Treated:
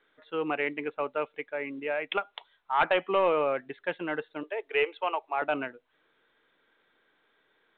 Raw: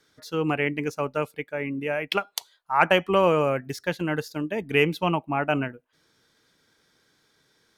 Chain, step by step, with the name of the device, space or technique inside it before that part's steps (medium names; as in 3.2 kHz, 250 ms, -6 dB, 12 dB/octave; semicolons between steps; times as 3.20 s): 4.43–5.42 s: elliptic high-pass 410 Hz, stop band 70 dB; telephone (band-pass 370–3100 Hz; saturation -13 dBFS, distortion -17 dB; trim -2 dB; µ-law 64 kbps 8 kHz)